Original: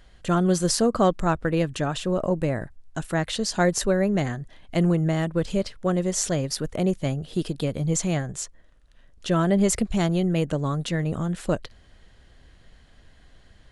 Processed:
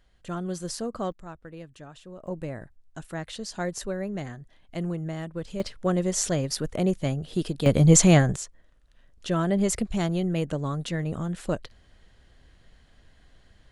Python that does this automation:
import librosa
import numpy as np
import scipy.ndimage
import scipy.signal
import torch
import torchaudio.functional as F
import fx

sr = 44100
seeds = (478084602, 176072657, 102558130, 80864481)

y = fx.gain(x, sr, db=fx.steps((0.0, -11.0), (1.12, -19.0), (2.27, -9.5), (5.6, -1.0), (7.66, 8.5), (8.36, -3.5)))